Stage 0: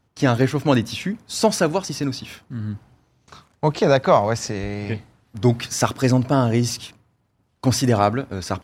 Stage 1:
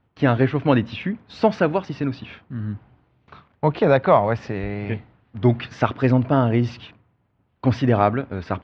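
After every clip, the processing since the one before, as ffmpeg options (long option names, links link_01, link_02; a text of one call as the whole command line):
ffmpeg -i in.wav -af "lowpass=frequency=3100:width=0.5412,lowpass=frequency=3100:width=1.3066" out.wav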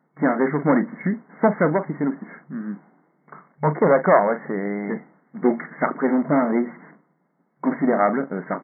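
ffmpeg -i in.wav -filter_complex "[0:a]asplit=2[link_01][link_02];[link_02]adelay=40,volume=-14dB[link_03];[link_01][link_03]amix=inputs=2:normalize=0,aeval=exprs='clip(val(0),-1,0.133)':channel_layout=same,afftfilt=real='re*between(b*sr/4096,150,2200)':imag='im*between(b*sr/4096,150,2200)':win_size=4096:overlap=0.75,volume=3dB" out.wav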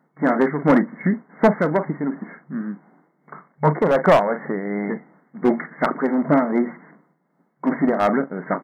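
ffmpeg -i in.wav -af "volume=10.5dB,asoftclip=hard,volume=-10.5dB,tremolo=f=2.7:d=0.47,volume=3.5dB" out.wav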